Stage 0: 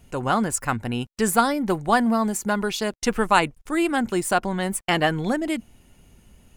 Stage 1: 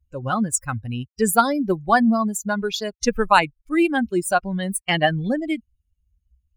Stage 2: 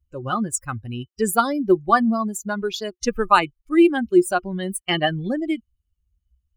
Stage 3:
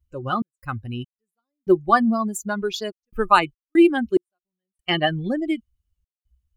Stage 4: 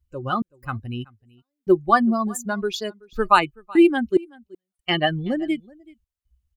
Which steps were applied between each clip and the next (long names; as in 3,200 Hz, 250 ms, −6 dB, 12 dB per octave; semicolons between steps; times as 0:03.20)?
spectral dynamics exaggerated over time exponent 2; level +5.5 dB
hollow resonant body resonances 360/1,200/3,000 Hz, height 12 dB, ringing for 70 ms; level −3 dB
gate pattern "xx.xx...xxxxxx." 72 BPM −60 dB
single-tap delay 378 ms −24 dB